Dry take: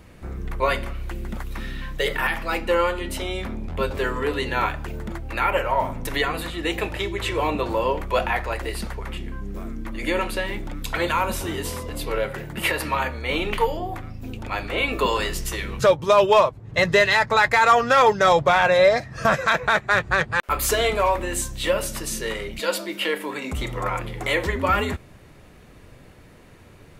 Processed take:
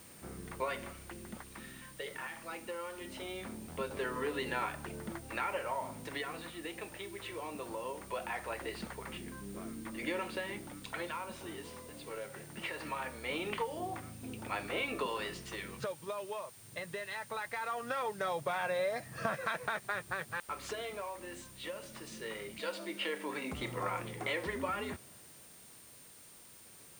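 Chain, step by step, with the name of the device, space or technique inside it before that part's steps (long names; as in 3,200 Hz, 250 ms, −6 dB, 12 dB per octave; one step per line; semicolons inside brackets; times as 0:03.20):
medium wave at night (band-pass filter 130–4,500 Hz; downward compressor, threshold −23 dBFS, peak gain reduction 11.5 dB; amplitude tremolo 0.21 Hz, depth 60%; steady tone 9,000 Hz −50 dBFS; white noise bed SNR 18 dB)
level −8 dB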